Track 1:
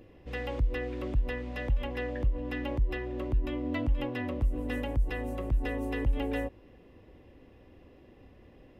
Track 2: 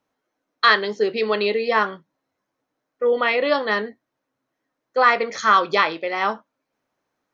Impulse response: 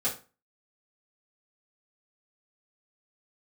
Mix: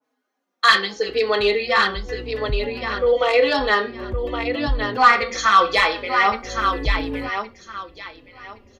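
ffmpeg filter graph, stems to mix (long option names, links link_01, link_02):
-filter_complex "[0:a]adynamicequalizer=threshold=0.00282:dfrequency=1700:dqfactor=0.7:tfrequency=1700:tqfactor=0.7:attack=5:release=100:ratio=0.375:range=2.5:mode=cutabove:tftype=highshelf,adelay=800,volume=0dB[link_01];[1:a]highpass=frequency=210:width=0.5412,highpass=frequency=210:width=1.3066,adynamicequalizer=threshold=0.0398:dfrequency=2000:dqfactor=0.7:tfrequency=2000:tqfactor=0.7:attack=5:release=100:ratio=0.375:range=3:mode=boostabove:tftype=highshelf,volume=-5dB,asplit=4[link_02][link_03][link_04][link_05];[link_03]volume=-10dB[link_06];[link_04]volume=-5dB[link_07];[link_05]apad=whole_len=423128[link_08];[link_01][link_08]sidechaincompress=threshold=-37dB:ratio=8:attack=16:release=226[link_09];[2:a]atrim=start_sample=2205[link_10];[link_06][link_10]afir=irnorm=-1:irlink=0[link_11];[link_07]aecho=0:1:1117|2234|3351|4468:1|0.23|0.0529|0.0122[link_12];[link_09][link_02][link_11][link_12]amix=inputs=4:normalize=0,acontrast=62,asplit=2[link_13][link_14];[link_14]adelay=4.2,afreqshift=-0.85[link_15];[link_13][link_15]amix=inputs=2:normalize=1"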